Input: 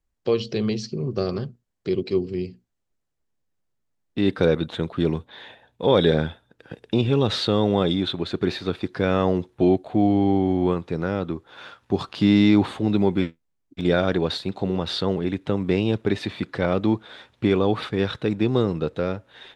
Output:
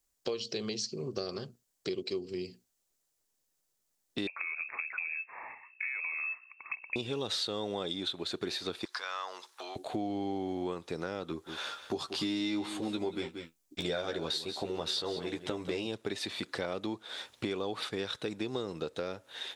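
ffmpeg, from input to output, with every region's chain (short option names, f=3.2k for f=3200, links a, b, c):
-filter_complex "[0:a]asettb=1/sr,asplit=3[a][b][c];[a]atrim=end=4.274[d];[b]atrim=start=4.27:end=6.96,asetpts=PTS-STARTPTS,afade=t=in:d=0.004:c=qsin,afade=t=out:st=2.686:d=0.004:c=qsin,asubboost=boost=11:cutoff=83,acompressor=threshold=-27dB:ratio=10:attack=3.2:release=140:knee=1:detection=peak,lowpass=f=2.3k:t=q:w=0.5098,lowpass=f=2.3k:t=q:w=0.6013,lowpass=f=2.3k:t=q:w=0.9,lowpass=f=2.3k:t=q:w=2.563,afreqshift=-2700[e];[c]atrim=start=6.956[f];[d][e]acrossfade=d=0.004:c1=hsin:c2=qsin[g];[g][f]acrossfade=d=0.004:c1=qsin:c2=hsin,asettb=1/sr,asplit=3[h][i][j];[h]atrim=end=8.854[k];[i]atrim=start=8.85:end=9.76,asetpts=PTS-STARTPTS,afade=t=in:d=0.004:c=qsin,afade=t=out:st=0.906:d=0.004:c=qsin,equalizer=f=5k:w=1.4:g=6,acompressor=threshold=-28dB:ratio=3:attack=3.2:release=140:knee=1:detection=peak,highpass=f=1.1k:t=q:w=2.3[l];[j]atrim=start=9.756[m];[k][l]acrossfade=d=0.004:c1=hsin:c2=qsin[n];[n][m]acrossfade=d=0.004:c1=qsin:c2=hsin,asettb=1/sr,asplit=3[o][p][q];[o]atrim=end=11.284[r];[p]atrim=start=11.28:end=15.87,asetpts=PTS-STARTPTS,afade=t=in:d=0.004:c=qsin,afade=t=out:st=4.586:d=0.004:c=qsin,asplit=2[s][t];[t]adelay=13,volume=-3.5dB[u];[s][u]amix=inputs=2:normalize=0,atrim=end_sample=202419,aecho=1:1:183:0.211,atrim=end_sample=202419[v];[q]atrim=start=15.866[w];[r][v]acrossfade=d=0.004:c1=hsin:c2=qsin[x];[x][w]acrossfade=d=0.004:c1=qsin:c2=hsin,bass=f=250:g=-11,treble=f=4k:g=14,acompressor=threshold=-34dB:ratio=4"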